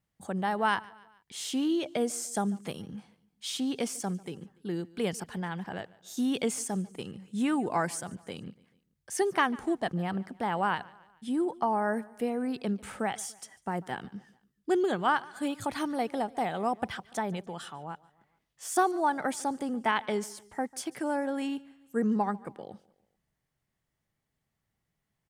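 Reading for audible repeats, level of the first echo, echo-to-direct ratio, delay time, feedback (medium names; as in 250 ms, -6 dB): 3, -22.5 dB, -21.5 dB, 145 ms, 49%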